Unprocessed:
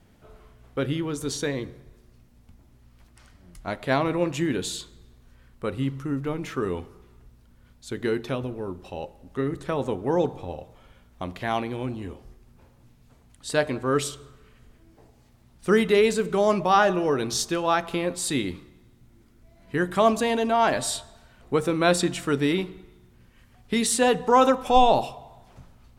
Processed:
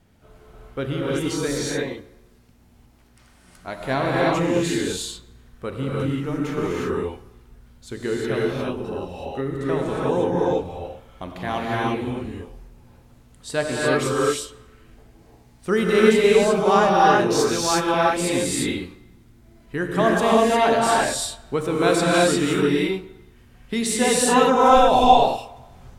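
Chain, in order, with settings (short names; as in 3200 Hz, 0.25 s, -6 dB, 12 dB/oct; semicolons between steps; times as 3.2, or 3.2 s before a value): 1.57–3.79 low shelf 160 Hz -8 dB; non-linear reverb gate 0.38 s rising, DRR -5 dB; gain -1.5 dB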